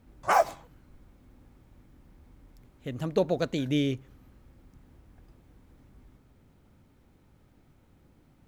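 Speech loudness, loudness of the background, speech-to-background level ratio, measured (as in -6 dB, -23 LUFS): -30.0 LUFS, -26.0 LUFS, -4.0 dB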